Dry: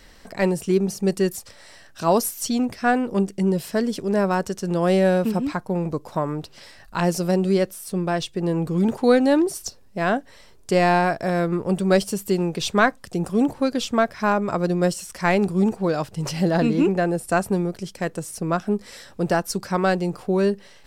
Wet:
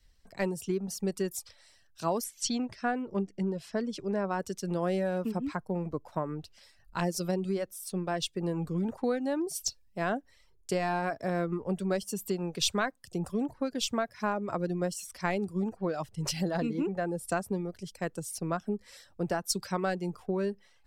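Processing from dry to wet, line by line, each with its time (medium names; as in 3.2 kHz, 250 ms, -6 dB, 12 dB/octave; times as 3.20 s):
2.24–4.39 s: low-pass 6.6 kHz
whole clip: reverb removal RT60 0.52 s; compression 6:1, threshold -22 dBFS; three bands expanded up and down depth 70%; trim -5 dB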